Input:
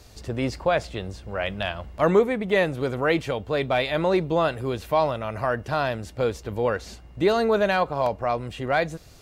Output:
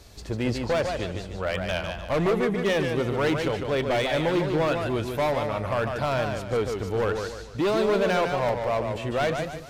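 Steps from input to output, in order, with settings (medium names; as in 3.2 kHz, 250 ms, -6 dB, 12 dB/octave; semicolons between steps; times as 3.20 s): tape speed -5%; overload inside the chain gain 20.5 dB; modulated delay 148 ms, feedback 40%, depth 120 cents, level -5.5 dB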